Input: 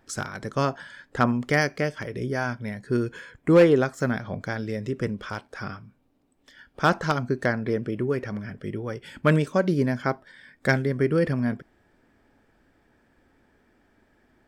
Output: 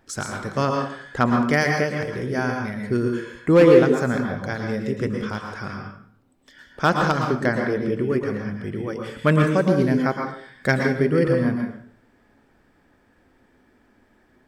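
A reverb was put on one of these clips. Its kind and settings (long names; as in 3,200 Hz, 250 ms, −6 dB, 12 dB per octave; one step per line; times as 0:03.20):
dense smooth reverb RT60 0.58 s, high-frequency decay 0.75×, pre-delay 100 ms, DRR 2 dB
level +1.5 dB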